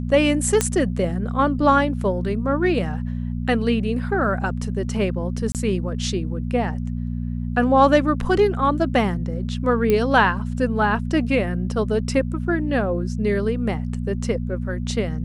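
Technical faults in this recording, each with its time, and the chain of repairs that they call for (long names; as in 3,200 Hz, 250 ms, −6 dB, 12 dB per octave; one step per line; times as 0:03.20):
mains hum 60 Hz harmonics 4 −26 dBFS
0:00.61: click −4 dBFS
0:05.52–0:05.55: drop-out 28 ms
0:09.90: click −8 dBFS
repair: click removal
hum removal 60 Hz, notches 4
repair the gap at 0:05.52, 28 ms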